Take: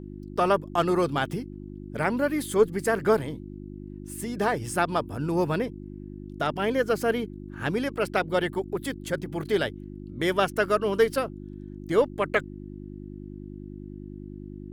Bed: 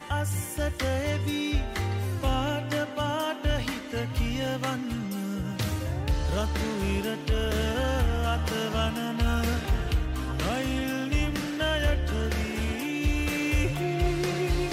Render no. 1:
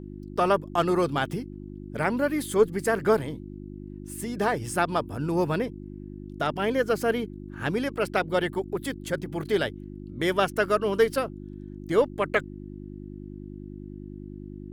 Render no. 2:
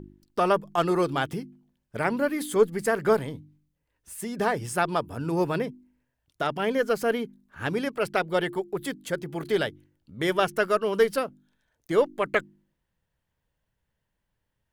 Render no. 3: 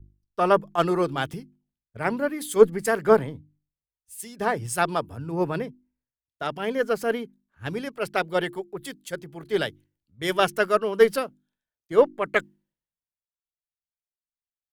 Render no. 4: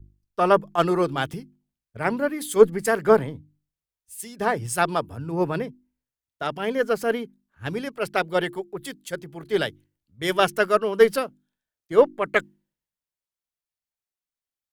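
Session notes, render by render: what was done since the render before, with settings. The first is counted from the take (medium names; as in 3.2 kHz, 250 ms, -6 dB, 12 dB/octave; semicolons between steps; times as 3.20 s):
no audible change
de-hum 50 Hz, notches 7
three bands expanded up and down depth 100%
trim +1.5 dB; peak limiter -3 dBFS, peak gain reduction 1.5 dB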